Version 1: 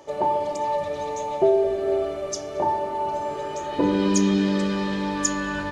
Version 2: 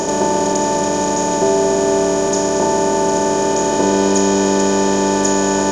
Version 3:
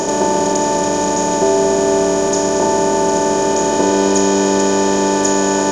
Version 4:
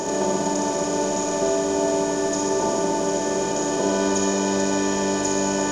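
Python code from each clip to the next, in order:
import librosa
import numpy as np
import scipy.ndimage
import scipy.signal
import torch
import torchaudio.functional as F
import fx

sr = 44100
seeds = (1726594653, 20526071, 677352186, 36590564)

y1 = fx.bin_compress(x, sr, power=0.2)
y2 = fx.hum_notches(y1, sr, base_hz=50, count=4)
y2 = y2 * 10.0 ** (1.0 / 20.0)
y3 = fx.room_flutter(y2, sr, wall_m=10.6, rt60_s=0.76)
y3 = y3 * 10.0 ** (-8.5 / 20.0)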